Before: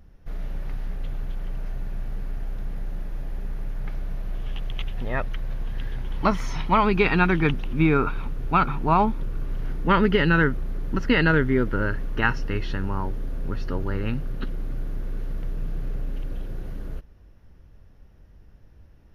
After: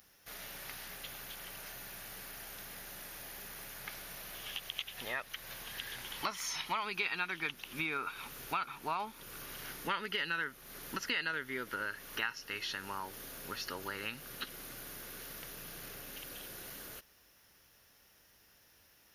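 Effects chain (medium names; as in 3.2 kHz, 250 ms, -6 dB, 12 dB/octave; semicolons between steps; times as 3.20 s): differentiator; compression 3:1, threshold -52 dBFS, peak gain reduction 16.5 dB; trim +14.5 dB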